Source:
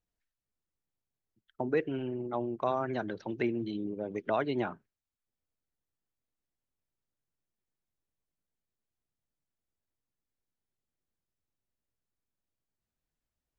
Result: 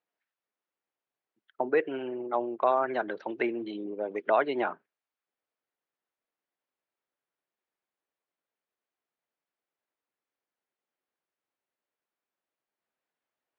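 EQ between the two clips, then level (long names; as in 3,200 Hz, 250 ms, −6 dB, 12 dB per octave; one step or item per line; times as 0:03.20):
band-pass filter 450–2,600 Hz
+7.0 dB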